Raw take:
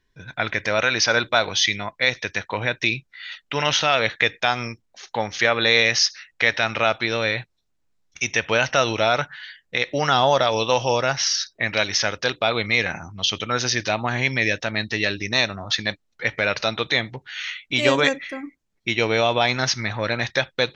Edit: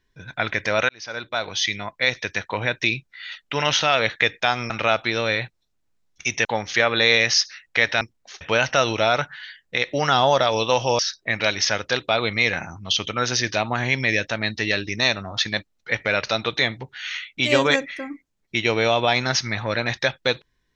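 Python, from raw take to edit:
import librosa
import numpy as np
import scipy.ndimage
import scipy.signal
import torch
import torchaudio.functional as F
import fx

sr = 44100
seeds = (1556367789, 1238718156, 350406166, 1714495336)

y = fx.edit(x, sr, fx.fade_in_span(start_s=0.89, length_s=1.57, curve='qsin'),
    fx.swap(start_s=4.7, length_s=0.4, other_s=6.66, other_length_s=1.75),
    fx.cut(start_s=10.99, length_s=0.33), tone=tone)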